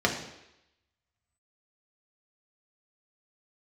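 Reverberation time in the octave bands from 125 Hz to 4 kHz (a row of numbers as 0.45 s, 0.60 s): 0.70 s, 0.80 s, 0.85 s, 0.85 s, 0.90 s, 0.95 s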